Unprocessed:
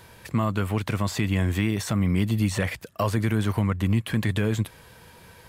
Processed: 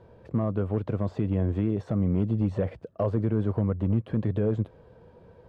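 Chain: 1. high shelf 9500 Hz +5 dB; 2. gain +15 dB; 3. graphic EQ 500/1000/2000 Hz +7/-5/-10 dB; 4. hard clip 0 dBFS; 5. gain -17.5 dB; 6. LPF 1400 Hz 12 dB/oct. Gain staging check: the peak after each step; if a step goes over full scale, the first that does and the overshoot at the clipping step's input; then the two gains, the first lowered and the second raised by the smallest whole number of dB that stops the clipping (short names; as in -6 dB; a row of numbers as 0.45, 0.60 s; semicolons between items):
-12.0, +3.0, +3.5, 0.0, -17.5, -17.0 dBFS; step 2, 3.5 dB; step 2 +11 dB, step 5 -13.5 dB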